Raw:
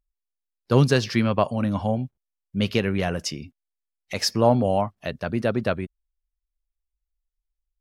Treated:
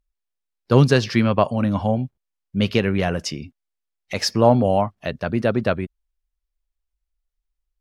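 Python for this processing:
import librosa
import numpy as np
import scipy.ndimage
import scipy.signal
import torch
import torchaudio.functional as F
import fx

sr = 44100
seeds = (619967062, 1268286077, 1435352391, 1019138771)

y = fx.high_shelf(x, sr, hz=7300.0, db=-7.5)
y = y * librosa.db_to_amplitude(3.5)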